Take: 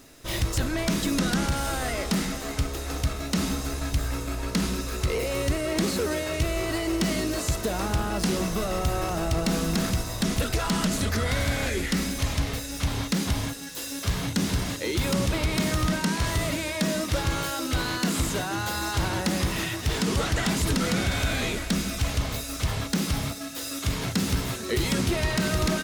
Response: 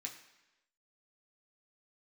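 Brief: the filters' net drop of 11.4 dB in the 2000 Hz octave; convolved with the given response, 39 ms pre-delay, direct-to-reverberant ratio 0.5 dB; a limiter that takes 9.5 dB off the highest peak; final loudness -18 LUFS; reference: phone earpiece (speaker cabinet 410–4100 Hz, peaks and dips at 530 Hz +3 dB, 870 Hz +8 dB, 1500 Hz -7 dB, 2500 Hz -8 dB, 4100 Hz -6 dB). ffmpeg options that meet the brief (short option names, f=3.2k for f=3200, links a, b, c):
-filter_complex "[0:a]equalizer=f=2k:t=o:g=-8,alimiter=level_in=1dB:limit=-24dB:level=0:latency=1,volume=-1dB,asplit=2[a][b];[1:a]atrim=start_sample=2205,adelay=39[c];[b][c]afir=irnorm=-1:irlink=0,volume=2dB[d];[a][d]amix=inputs=2:normalize=0,highpass=410,equalizer=f=530:t=q:w=4:g=3,equalizer=f=870:t=q:w=4:g=8,equalizer=f=1.5k:t=q:w=4:g=-7,equalizer=f=2.5k:t=q:w=4:g=-8,equalizer=f=4.1k:t=q:w=4:g=-6,lowpass=f=4.1k:w=0.5412,lowpass=f=4.1k:w=1.3066,volume=18.5dB"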